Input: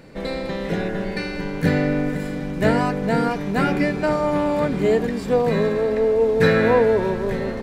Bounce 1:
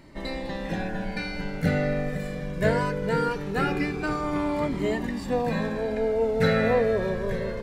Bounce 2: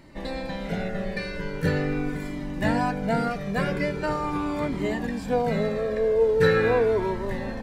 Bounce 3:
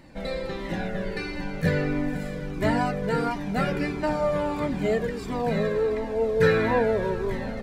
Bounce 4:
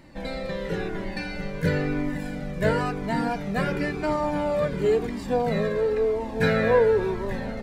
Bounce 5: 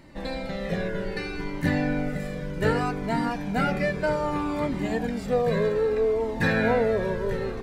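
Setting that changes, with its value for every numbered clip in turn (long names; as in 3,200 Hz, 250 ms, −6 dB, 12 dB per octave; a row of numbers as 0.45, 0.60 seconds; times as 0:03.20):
flanger whose copies keep moving one way, speed: 0.21, 0.42, 1.5, 0.97, 0.64 Hertz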